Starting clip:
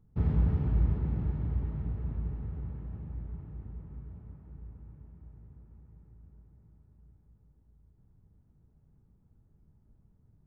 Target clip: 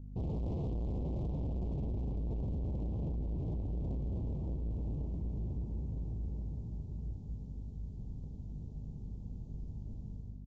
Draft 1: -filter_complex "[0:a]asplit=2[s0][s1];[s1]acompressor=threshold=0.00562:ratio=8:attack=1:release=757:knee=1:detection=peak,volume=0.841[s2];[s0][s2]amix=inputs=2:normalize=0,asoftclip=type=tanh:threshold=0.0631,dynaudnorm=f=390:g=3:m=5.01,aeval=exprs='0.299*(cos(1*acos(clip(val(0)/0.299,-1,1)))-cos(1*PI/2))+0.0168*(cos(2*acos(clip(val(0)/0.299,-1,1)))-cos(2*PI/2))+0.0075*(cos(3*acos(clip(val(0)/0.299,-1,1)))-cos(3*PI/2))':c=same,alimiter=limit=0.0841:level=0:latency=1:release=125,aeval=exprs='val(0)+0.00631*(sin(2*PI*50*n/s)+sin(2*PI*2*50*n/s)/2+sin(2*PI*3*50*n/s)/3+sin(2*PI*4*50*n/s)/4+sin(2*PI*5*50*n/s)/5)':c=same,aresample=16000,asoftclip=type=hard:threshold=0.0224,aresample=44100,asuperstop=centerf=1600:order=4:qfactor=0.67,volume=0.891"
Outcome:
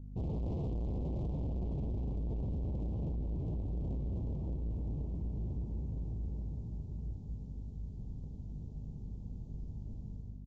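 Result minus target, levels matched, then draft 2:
compression: peak gain reduction +6.5 dB
-filter_complex "[0:a]asplit=2[s0][s1];[s1]acompressor=threshold=0.0133:ratio=8:attack=1:release=757:knee=1:detection=peak,volume=0.841[s2];[s0][s2]amix=inputs=2:normalize=0,asoftclip=type=tanh:threshold=0.0631,dynaudnorm=f=390:g=3:m=5.01,aeval=exprs='0.299*(cos(1*acos(clip(val(0)/0.299,-1,1)))-cos(1*PI/2))+0.0168*(cos(2*acos(clip(val(0)/0.299,-1,1)))-cos(2*PI/2))+0.0075*(cos(3*acos(clip(val(0)/0.299,-1,1)))-cos(3*PI/2))':c=same,alimiter=limit=0.0841:level=0:latency=1:release=125,aeval=exprs='val(0)+0.00631*(sin(2*PI*50*n/s)+sin(2*PI*2*50*n/s)/2+sin(2*PI*3*50*n/s)/3+sin(2*PI*4*50*n/s)/4+sin(2*PI*5*50*n/s)/5)':c=same,aresample=16000,asoftclip=type=hard:threshold=0.0224,aresample=44100,asuperstop=centerf=1600:order=4:qfactor=0.67,volume=0.891"

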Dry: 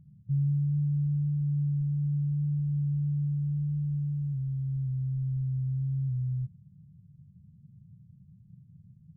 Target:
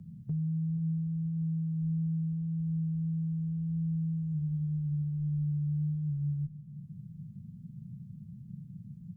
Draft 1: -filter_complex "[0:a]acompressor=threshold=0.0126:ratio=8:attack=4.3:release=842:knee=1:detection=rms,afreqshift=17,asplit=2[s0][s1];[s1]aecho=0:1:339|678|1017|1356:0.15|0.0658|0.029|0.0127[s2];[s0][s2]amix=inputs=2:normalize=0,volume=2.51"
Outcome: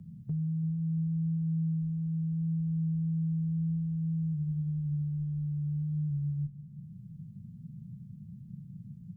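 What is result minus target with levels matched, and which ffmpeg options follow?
echo 139 ms early
-filter_complex "[0:a]acompressor=threshold=0.0126:ratio=8:attack=4.3:release=842:knee=1:detection=rms,afreqshift=17,asplit=2[s0][s1];[s1]aecho=0:1:478|956|1434|1912:0.15|0.0658|0.029|0.0127[s2];[s0][s2]amix=inputs=2:normalize=0,volume=2.51"

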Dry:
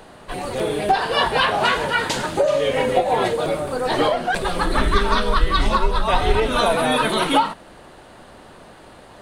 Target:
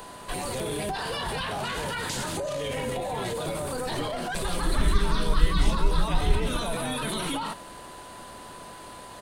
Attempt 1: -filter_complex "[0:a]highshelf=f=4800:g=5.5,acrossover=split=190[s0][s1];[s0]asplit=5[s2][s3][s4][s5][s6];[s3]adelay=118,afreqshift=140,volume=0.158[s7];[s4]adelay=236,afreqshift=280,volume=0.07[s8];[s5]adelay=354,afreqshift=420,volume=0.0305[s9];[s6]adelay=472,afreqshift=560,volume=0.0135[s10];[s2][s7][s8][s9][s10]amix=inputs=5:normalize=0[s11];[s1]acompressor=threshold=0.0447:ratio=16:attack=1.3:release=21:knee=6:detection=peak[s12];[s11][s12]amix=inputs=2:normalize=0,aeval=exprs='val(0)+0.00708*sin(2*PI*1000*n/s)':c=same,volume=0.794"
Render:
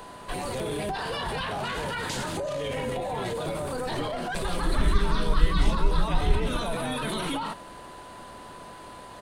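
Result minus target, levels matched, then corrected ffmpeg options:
8 kHz band -4.5 dB
-filter_complex "[0:a]highshelf=f=4800:g=13,acrossover=split=190[s0][s1];[s0]asplit=5[s2][s3][s4][s5][s6];[s3]adelay=118,afreqshift=140,volume=0.158[s7];[s4]adelay=236,afreqshift=280,volume=0.07[s8];[s5]adelay=354,afreqshift=420,volume=0.0305[s9];[s6]adelay=472,afreqshift=560,volume=0.0135[s10];[s2][s7][s8][s9][s10]amix=inputs=5:normalize=0[s11];[s1]acompressor=threshold=0.0447:ratio=16:attack=1.3:release=21:knee=6:detection=peak[s12];[s11][s12]amix=inputs=2:normalize=0,aeval=exprs='val(0)+0.00708*sin(2*PI*1000*n/s)':c=same,volume=0.794"

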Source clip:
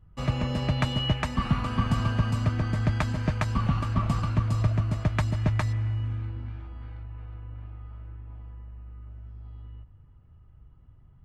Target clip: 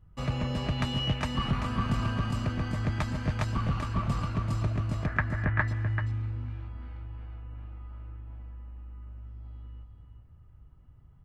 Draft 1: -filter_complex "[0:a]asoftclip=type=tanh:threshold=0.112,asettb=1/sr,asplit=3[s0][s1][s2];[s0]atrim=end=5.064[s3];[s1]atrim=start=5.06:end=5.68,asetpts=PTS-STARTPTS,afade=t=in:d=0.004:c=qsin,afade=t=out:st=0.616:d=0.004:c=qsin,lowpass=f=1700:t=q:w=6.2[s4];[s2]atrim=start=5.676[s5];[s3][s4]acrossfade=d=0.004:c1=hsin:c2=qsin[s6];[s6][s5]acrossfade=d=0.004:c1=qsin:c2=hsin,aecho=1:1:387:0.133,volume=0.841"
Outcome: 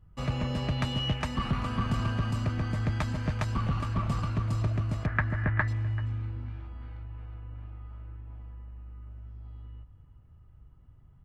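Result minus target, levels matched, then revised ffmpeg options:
echo-to-direct -9.5 dB
-filter_complex "[0:a]asoftclip=type=tanh:threshold=0.112,asettb=1/sr,asplit=3[s0][s1][s2];[s0]atrim=end=5.064[s3];[s1]atrim=start=5.06:end=5.68,asetpts=PTS-STARTPTS,afade=t=in:d=0.004:c=qsin,afade=t=out:st=0.616:d=0.004:c=qsin,lowpass=f=1700:t=q:w=6.2[s4];[s2]atrim=start=5.676[s5];[s3][s4]acrossfade=d=0.004:c1=hsin:c2=qsin[s6];[s6][s5]acrossfade=d=0.004:c1=qsin:c2=hsin,aecho=1:1:387:0.398,volume=0.841"

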